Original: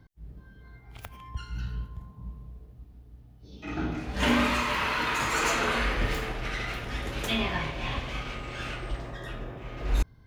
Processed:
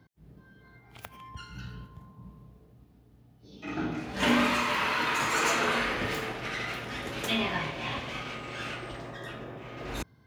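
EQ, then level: high-pass 130 Hz 12 dB/octave; 0.0 dB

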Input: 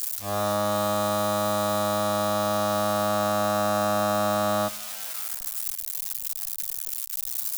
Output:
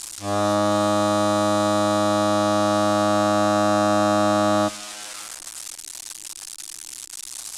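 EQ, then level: low-pass 9.2 kHz 24 dB/octave; peaking EQ 320 Hz +10.5 dB 0.38 oct; +4.0 dB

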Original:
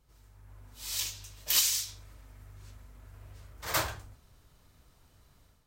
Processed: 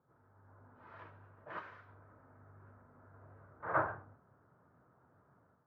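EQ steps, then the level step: high-pass 110 Hz 24 dB/octave; Chebyshev low-pass 1.5 kHz, order 4; bass shelf 370 Hz -3.5 dB; +2.0 dB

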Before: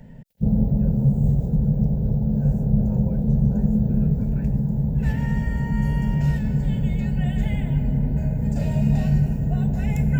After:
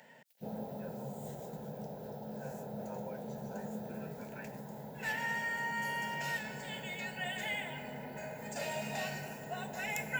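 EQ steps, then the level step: high-pass 900 Hz 12 dB/octave; +3.5 dB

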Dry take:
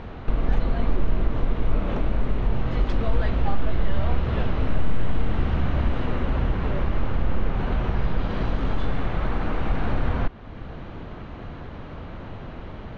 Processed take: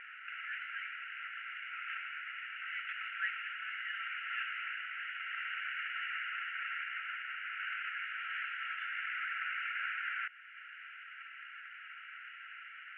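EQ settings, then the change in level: brick-wall FIR high-pass 1.3 kHz; rippled Chebyshev low-pass 2.9 kHz, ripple 3 dB; +4.5 dB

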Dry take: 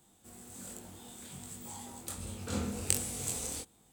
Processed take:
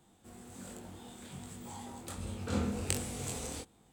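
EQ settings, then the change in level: treble shelf 5.4 kHz -12 dB; +2.5 dB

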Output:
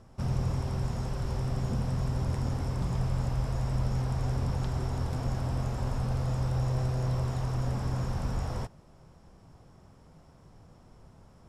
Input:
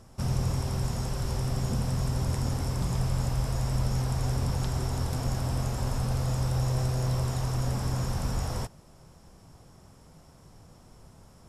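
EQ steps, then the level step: low-pass 2.8 kHz 6 dB/octave; -1.5 dB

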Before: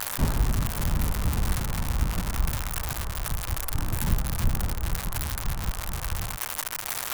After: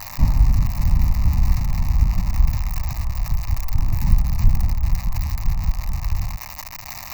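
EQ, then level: bass shelf 110 Hz +7 dB; bass shelf 410 Hz +4 dB; static phaser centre 2.2 kHz, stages 8; 0.0 dB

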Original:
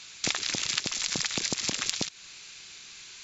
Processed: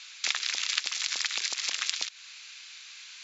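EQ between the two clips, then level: high-pass 1.3 kHz 12 dB/octave; distance through air 79 m; +3.0 dB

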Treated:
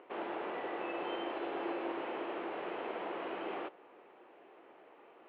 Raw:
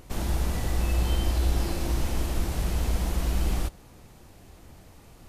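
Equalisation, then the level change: Chebyshev band-pass 370–3000 Hz, order 3; distance through air 430 m; +1.5 dB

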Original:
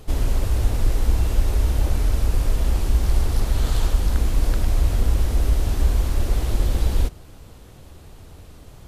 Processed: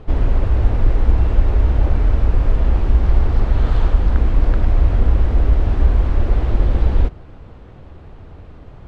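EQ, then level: low-pass 2 kHz 12 dB/octave; +5.0 dB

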